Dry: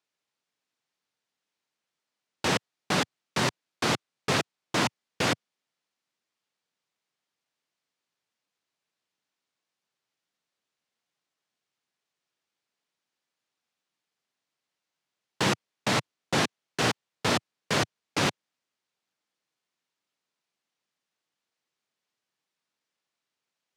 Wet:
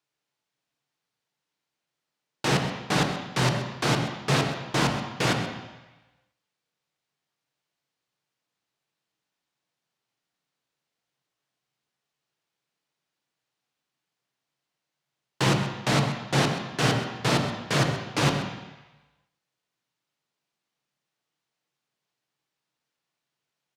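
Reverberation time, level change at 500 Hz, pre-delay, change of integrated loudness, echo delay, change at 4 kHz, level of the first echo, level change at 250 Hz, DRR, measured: 1.1 s, +2.5 dB, 3 ms, +2.5 dB, 129 ms, +1.0 dB, −15.0 dB, +4.5 dB, 2.5 dB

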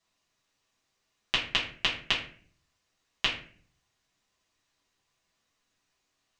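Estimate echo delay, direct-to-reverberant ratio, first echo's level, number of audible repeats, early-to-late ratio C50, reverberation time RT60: no echo audible, −7.0 dB, no echo audible, no echo audible, 7.5 dB, 0.50 s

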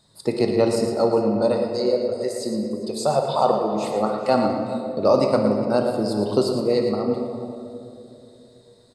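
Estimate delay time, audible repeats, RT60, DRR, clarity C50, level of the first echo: 114 ms, 2, 2.8 s, 1.5 dB, 2.5 dB, −9.0 dB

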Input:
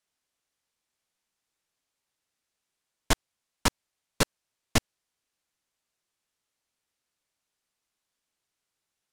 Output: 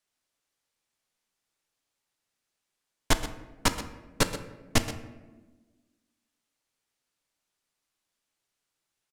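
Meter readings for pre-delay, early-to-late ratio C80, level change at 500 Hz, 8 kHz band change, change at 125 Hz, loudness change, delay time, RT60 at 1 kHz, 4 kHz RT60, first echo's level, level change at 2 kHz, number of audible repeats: 3 ms, 11.0 dB, +1.0 dB, +0.5 dB, +0.5 dB, −0.5 dB, 126 ms, 1.1 s, 0.70 s, −14.0 dB, +0.5 dB, 1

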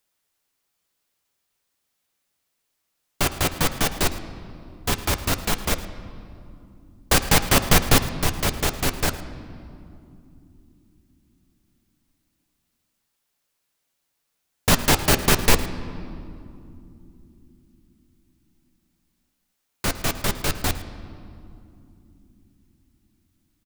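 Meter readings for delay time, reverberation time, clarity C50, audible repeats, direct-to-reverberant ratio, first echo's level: 109 ms, 2.9 s, 11.5 dB, 1, 8.5 dB, −17.5 dB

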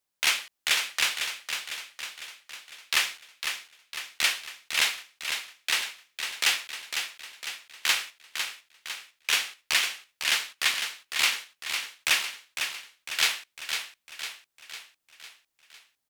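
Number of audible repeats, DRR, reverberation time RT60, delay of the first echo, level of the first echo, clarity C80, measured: 6, no reverb audible, no reverb audible, 503 ms, −7.0 dB, no reverb audible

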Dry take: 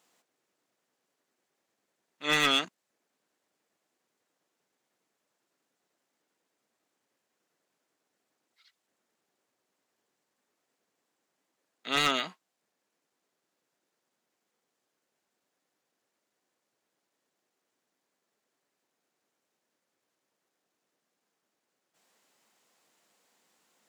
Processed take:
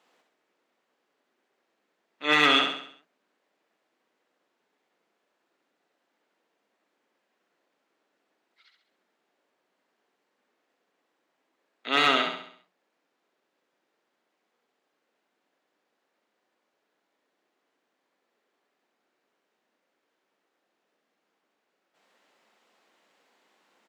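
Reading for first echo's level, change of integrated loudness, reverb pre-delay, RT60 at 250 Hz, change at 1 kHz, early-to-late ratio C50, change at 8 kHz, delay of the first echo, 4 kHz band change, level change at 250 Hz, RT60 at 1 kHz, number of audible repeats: −5.5 dB, +4.5 dB, no reverb audible, no reverb audible, +6.5 dB, no reverb audible, −5.0 dB, 67 ms, +4.0 dB, +5.0 dB, no reverb audible, 5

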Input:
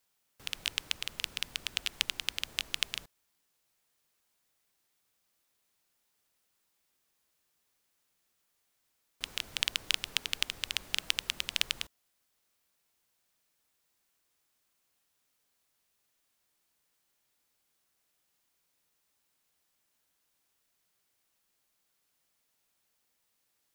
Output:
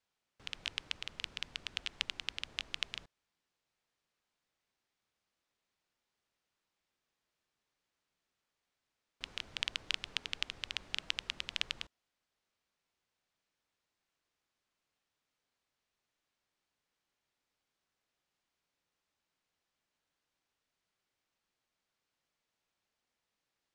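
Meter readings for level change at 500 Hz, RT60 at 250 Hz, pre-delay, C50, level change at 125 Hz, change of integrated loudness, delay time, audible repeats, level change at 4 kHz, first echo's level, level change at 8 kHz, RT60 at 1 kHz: −4.0 dB, no reverb audible, no reverb audible, no reverb audible, −3.5 dB, −6.0 dB, no echo audible, no echo audible, −6.0 dB, no echo audible, −11.5 dB, no reverb audible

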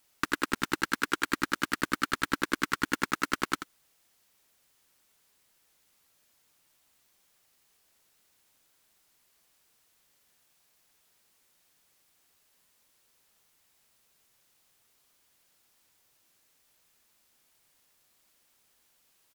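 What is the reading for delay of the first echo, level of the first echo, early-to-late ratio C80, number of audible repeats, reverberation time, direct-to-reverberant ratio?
85 ms, −10.5 dB, no reverb audible, 1, no reverb audible, no reverb audible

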